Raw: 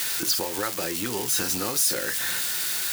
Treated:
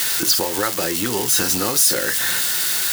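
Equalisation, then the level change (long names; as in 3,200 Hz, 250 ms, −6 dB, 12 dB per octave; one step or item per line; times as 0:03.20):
notch filter 2,400 Hz, Q 17
+7.0 dB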